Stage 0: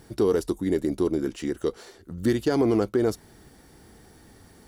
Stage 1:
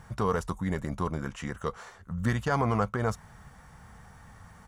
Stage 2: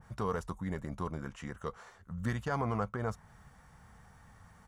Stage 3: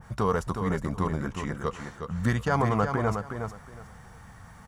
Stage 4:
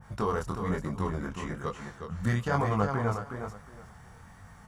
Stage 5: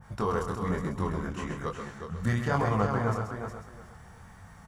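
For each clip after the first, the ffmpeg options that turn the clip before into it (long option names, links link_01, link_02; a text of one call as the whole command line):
ffmpeg -i in.wav -af "firequalizer=gain_entry='entry(170,0);entry(330,-22);entry(500,-7);entry(1100,6);entry(1500,1);entry(4500,-13);entry(6400,-5);entry(12000,-14)':delay=0.05:min_phase=1,volume=3.5dB" out.wav
ffmpeg -i in.wav -af "adynamicequalizer=threshold=0.00562:dfrequency=2200:dqfactor=0.7:tfrequency=2200:tqfactor=0.7:attack=5:release=100:ratio=0.375:range=2.5:mode=cutabove:tftype=highshelf,volume=-6.5dB" out.wav
ffmpeg -i in.wav -af "aecho=1:1:364|728|1092:0.447|0.0893|0.0179,volume=8.5dB" out.wav
ffmpeg -i in.wav -af "flanger=delay=19:depth=7.5:speed=1.1" out.wav
ffmpeg -i in.wav -af "aecho=1:1:131:0.447" out.wav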